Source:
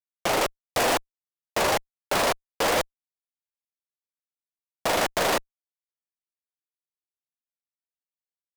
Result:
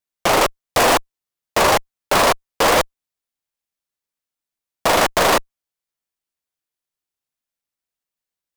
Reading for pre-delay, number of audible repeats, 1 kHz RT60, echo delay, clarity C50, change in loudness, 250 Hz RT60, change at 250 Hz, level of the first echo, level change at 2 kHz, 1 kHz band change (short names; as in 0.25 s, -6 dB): none, none, none, none, none, +8.0 dB, none, +8.0 dB, none, +8.0 dB, +9.5 dB